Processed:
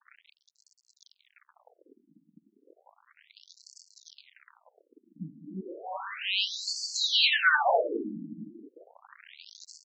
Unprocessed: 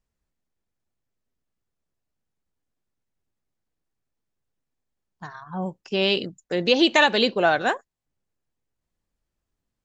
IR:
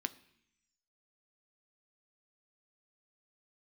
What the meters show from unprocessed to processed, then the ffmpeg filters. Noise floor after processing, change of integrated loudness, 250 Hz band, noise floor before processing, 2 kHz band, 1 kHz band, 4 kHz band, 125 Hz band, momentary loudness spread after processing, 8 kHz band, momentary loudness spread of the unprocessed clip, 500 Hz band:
−77 dBFS, −5.5 dB, −13.5 dB, −83 dBFS, −2.5 dB, −5.0 dB, −2.0 dB, −11.5 dB, 22 LU, can't be measured, 15 LU, −10.0 dB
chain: -filter_complex "[0:a]aeval=exprs='val(0)+0.5*0.0299*sgn(val(0))':channel_layout=same,aecho=1:1:300|555|771.8|956|1113:0.631|0.398|0.251|0.158|0.1[link_01];[1:a]atrim=start_sample=2205,asetrate=39690,aresample=44100[link_02];[link_01][link_02]afir=irnorm=-1:irlink=0,aresample=16000,acrusher=bits=4:mix=0:aa=0.5,aresample=44100,afftfilt=real='re*between(b*sr/1024,220*pow(6200/220,0.5+0.5*sin(2*PI*0.33*pts/sr))/1.41,220*pow(6200/220,0.5+0.5*sin(2*PI*0.33*pts/sr))*1.41)':imag='im*between(b*sr/1024,220*pow(6200/220,0.5+0.5*sin(2*PI*0.33*pts/sr))/1.41,220*pow(6200/220,0.5+0.5*sin(2*PI*0.33*pts/sr))*1.41)':win_size=1024:overlap=0.75"

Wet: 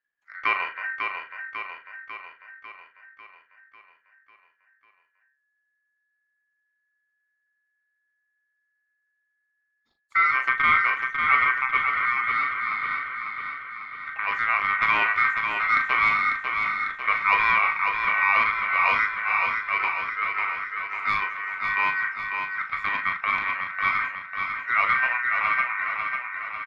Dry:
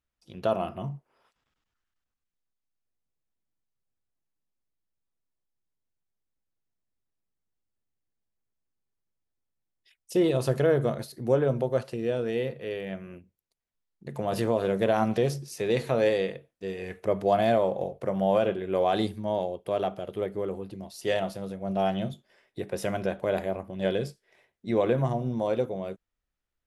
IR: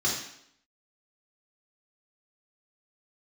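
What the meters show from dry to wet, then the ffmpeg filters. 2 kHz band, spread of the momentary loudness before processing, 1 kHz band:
+20.5 dB, 14 LU, +10.0 dB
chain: -filter_complex "[0:a]adynamicsmooth=sensitivity=0.5:basefreq=1300,aeval=exprs='val(0)*sin(2*PI*1700*n/s)':channel_layout=same,asplit=2[link_01][link_02];[link_02]adelay=39,volume=-8.5dB[link_03];[link_01][link_03]amix=inputs=2:normalize=0,aecho=1:1:547|1094|1641|2188|2735|3282|3829|4376:0.531|0.308|0.179|0.104|0.0601|0.0348|0.0202|0.0117,volume=5dB"

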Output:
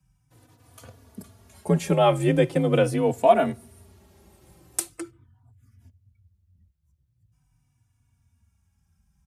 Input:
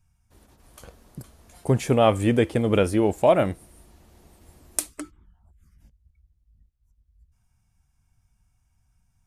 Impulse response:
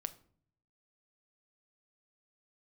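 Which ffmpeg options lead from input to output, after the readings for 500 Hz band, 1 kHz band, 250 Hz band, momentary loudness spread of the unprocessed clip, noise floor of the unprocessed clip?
0.0 dB, +2.0 dB, −1.5 dB, 16 LU, −68 dBFS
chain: -filter_complex "[0:a]asplit=2[link_01][link_02];[1:a]atrim=start_sample=2205,afade=type=out:start_time=0.27:duration=0.01,atrim=end_sample=12348[link_03];[link_02][link_03]afir=irnorm=-1:irlink=0,volume=-9dB[link_04];[link_01][link_04]amix=inputs=2:normalize=0,afreqshift=39,asplit=2[link_05][link_06];[link_06]adelay=3.4,afreqshift=-0.42[link_07];[link_05][link_07]amix=inputs=2:normalize=1"

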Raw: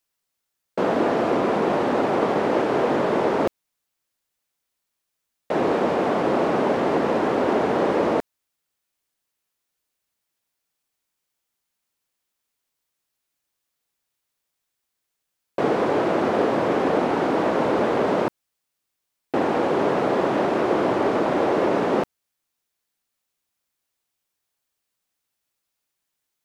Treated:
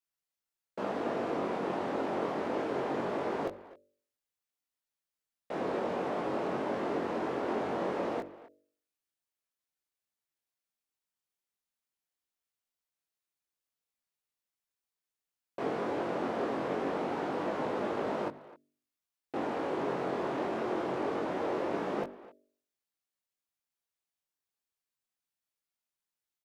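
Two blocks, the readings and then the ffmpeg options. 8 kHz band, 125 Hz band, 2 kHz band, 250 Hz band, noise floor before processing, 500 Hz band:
can't be measured, −12.5 dB, −12.0 dB, −12.5 dB, −80 dBFS, −12.5 dB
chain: -filter_complex "[0:a]flanger=delay=19.5:depth=2.7:speed=0.22,bandreject=frequency=48.8:width_type=h:width=4,bandreject=frequency=97.6:width_type=h:width=4,bandreject=frequency=146.4:width_type=h:width=4,bandreject=frequency=195.2:width_type=h:width=4,bandreject=frequency=244:width_type=h:width=4,bandreject=frequency=292.8:width_type=h:width=4,bandreject=frequency=341.6:width_type=h:width=4,bandreject=frequency=390.4:width_type=h:width=4,bandreject=frequency=439.2:width_type=h:width=4,bandreject=frequency=488:width_type=h:width=4,bandreject=frequency=536.8:width_type=h:width=4,bandreject=frequency=585.6:width_type=h:width=4,bandreject=frequency=634.4:width_type=h:width=4,asplit=2[link_01][link_02];[link_02]adelay=260,highpass=300,lowpass=3400,asoftclip=type=hard:threshold=-20dB,volume=-17dB[link_03];[link_01][link_03]amix=inputs=2:normalize=0,volume=-9dB"

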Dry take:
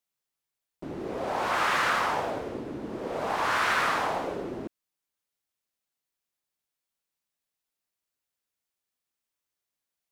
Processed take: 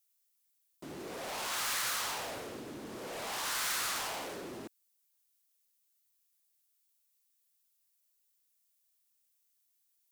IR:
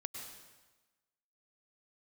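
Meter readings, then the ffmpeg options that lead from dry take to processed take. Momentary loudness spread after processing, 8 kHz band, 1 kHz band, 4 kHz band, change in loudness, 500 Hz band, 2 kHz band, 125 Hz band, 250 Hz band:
14 LU, +6.5 dB, −13.0 dB, −1.0 dB, −7.5 dB, −11.5 dB, −10.5 dB, −11.0 dB, −10.5 dB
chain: -af "highpass=75,volume=33dB,asoftclip=hard,volume=-33dB,crystalizer=i=6:c=0,volume=-8dB"

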